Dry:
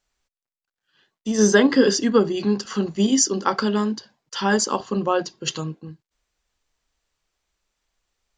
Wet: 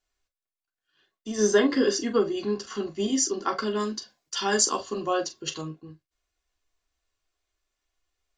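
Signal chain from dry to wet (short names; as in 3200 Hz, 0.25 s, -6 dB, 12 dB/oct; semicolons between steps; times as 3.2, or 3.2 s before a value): 3.79–5.41 high shelf 3400 Hz -> 4700 Hz +12 dB; reverb, pre-delay 3 ms, DRR 1 dB; gain -8 dB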